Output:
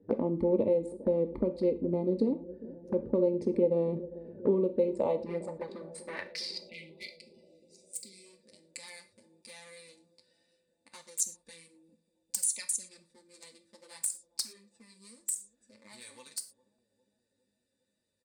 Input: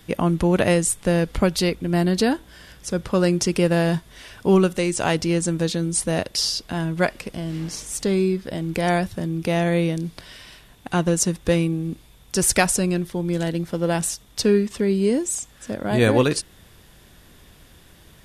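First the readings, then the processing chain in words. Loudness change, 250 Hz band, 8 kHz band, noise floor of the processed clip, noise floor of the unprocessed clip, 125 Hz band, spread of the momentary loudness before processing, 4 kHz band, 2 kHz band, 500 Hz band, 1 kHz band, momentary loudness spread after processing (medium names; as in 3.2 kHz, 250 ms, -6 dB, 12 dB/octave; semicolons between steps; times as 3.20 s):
-10.0 dB, -13.5 dB, -10.0 dB, -80 dBFS, -51 dBFS, -19.5 dB, 10 LU, -16.0 dB, -21.5 dB, -9.0 dB, -19.0 dB, 21 LU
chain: local Wiener filter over 41 samples; rippled EQ curve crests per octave 0.95, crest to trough 11 dB; compression 5:1, threshold -24 dBFS, peak gain reduction 14 dB; band-pass sweep 410 Hz -> 7.1 kHz, 4.73–7.65 s; peaking EQ 150 Hz +10 dB 0.65 oct; comb 3.4 ms, depth 47%; touch-sensitive flanger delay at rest 11.3 ms, full sweep at -30 dBFS; gated-style reverb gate 140 ms falling, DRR 8.5 dB; spectral selection erased 6.61–8.26 s, 420–2000 Hz; on a send: bucket-brigade echo 405 ms, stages 2048, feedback 68%, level -18 dB; on the sum: trim +4.5 dB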